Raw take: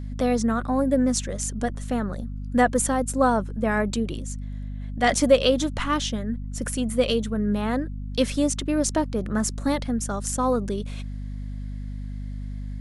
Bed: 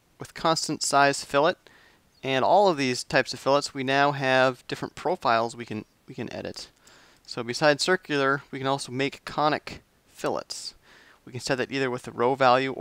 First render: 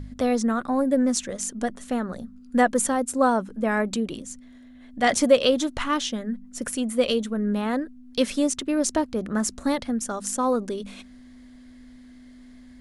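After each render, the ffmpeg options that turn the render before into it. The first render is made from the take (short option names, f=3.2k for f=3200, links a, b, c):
-af "bandreject=f=50:t=h:w=4,bandreject=f=100:t=h:w=4,bandreject=f=150:t=h:w=4,bandreject=f=200:t=h:w=4"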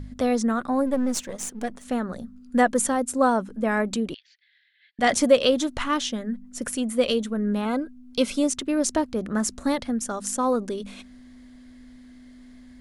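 -filter_complex "[0:a]asplit=3[a][b][c];[a]afade=t=out:st=0.85:d=0.02[d];[b]aeval=exprs='if(lt(val(0),0),0.447*val(0),val(0))':c=same,afade=t=in:st=0.85:d=0.02,afade=t=out:st=1.84:d=0.02[e];[c]afade=t=in:st=1.84:d=0.02[f];[d][e][f]amix=inputs=3:normalize=0,asettb=1/sr,asplit=3[g][h][i];[g]atrim=end=4.144[j];[h]atrim=start=4.14:end=4.99,asetpts=PTS-STARTPTS,afade=t=in:d=0.004:c=qsin,afade=t=out:st=0.846:d=0.004:c=qsin,asuperpass=centerf=2800:order=12:qfactor=0.89[k];[i]atrim=start=4.986[l];[j][k]acrossfade=d=0.004:c1=hsin:c2=qsin[m];[m][l]acrossfade=d=0.004:c1=qsin:c2=hsin,asettb=1/sr,asplit=3[n][o][p];[n]atrim=end=7.654[q];[o]atrim=start=7.65:end=8.44,asetpts=PTS-STARTPTS,afade=t=in:d=0.004:c=qsin,afade=t=out:st=0.786:d=0.004:c=qsin,asuperstop=centerf=1800:order=20:qfactor=5.6[r];[p]atrim=start=8.436[s];[q][r]acrossfade=d=0.004:c1=hsin:c2=qsin[t];[t][s]acrossfade=d=0.004:c1=qsin:c2=hsin"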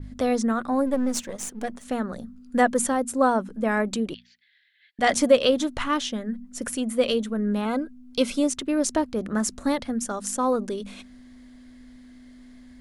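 -af "bandreject=f=60:t=h:w=6,bandreject=f=120:t=h:w=6,bandreject=f=180:t=h:w=6,bandreject=f=240:t=h:w=6,adynamicequalizer=threshold=0.00891:dfrequency=6700:dqfactor=0.81:tfrequency=6700:tqfactor=0.81:attack=5:release=100:ratio=0.375:range=2:mode=cutabove:tftype=bell"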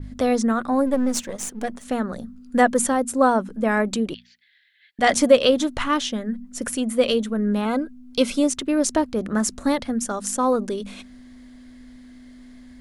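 -af "volume=3dB"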